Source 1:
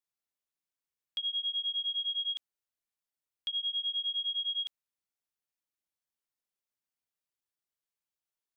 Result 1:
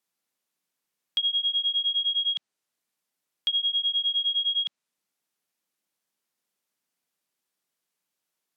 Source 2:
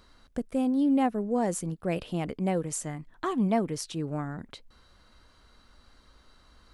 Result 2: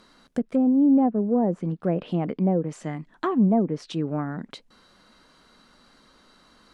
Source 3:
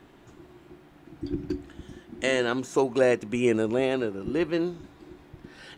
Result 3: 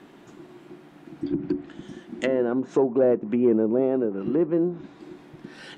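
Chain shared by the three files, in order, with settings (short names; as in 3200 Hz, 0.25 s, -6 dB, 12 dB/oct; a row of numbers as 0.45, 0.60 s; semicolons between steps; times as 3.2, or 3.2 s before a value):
sine folder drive 3 dB, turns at -9.5 dBFS; treble ducked by the level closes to 750 Hz, closed at -17 dBFS; resonant low shelf 120 Hz -13 dB, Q 1.5; match loudness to -24 LUFS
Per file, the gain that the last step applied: +3.0, -2.5, -3.5 dB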